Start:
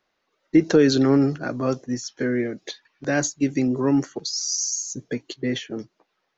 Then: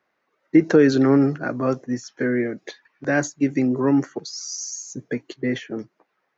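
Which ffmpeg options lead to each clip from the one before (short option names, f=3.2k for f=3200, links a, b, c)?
-af "highpass=100,highshelf=f=2.6k:t=q:w=1.5:g=-6.5,volume=1.5dB"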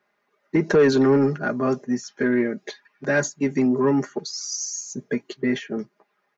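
-af "aecho=1:1:4.9:0.64,asoftclip=type=tanh:threshold=-9.5dB"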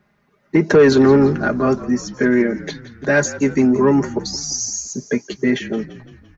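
-filter_complex "[0:a]acrossover=split=160[a][b];[a]acompressor=mode=upward:threshold=-52dB:ratio=2.5[c];[c][b]amix=inputs=2:normalize=0,asplit=6[d][e][f][g][h][i];[e]adelay=171,afreqshift=-43,volume=-16dB[j];[f]adelay=342,afreqshift=-86,volume=-21.4dB[k];[g]adelay=513,afreqshift=-129,volume=-26.7dB[l];[h]adelay=684,afreqshift=-172,volume=-32.1dB[m];[i]adelay=855,afreqshift=-215,volume=-37.4dB[n];[d][j][k][l][m][n]amix=inputs=6:normalize=0,volume=5.5dB"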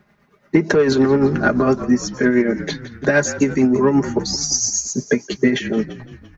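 -af "acompressor=threshold=-15dB:ratio=12,tremolo=f=8.8:d=0.47,volume=6dB"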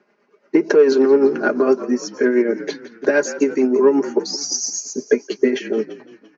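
-af "highpass=f=270:w=0.5412,highpass=f=270:w=1.3066,equalizer=f=420:t=q:w=4:g=5,equalizer=f=740:t=q:w=4:g=-4,equalizer=f=1.2k:t=q:w=4:g=-4,equalizer=f=1.9k:t=q:w=4:g=-6,equalizer=f=3.6k:t=q:w=4:g=-10,lowpass=f=6k:w=0.5412,lowpass=f=6k:w=1.3066"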